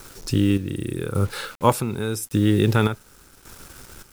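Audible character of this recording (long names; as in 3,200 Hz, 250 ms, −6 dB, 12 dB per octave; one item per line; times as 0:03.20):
a quantiser's noise floor 8 bits, dither none
chopped level 0.87 Hz, depth 60%, duty 50%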